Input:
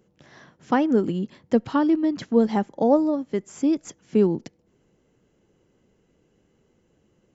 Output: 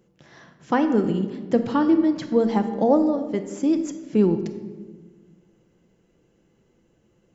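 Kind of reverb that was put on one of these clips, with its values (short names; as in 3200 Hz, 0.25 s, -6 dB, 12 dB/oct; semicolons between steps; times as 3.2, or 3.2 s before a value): shoebox room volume 1200 m³, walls mixed, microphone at 0.77 m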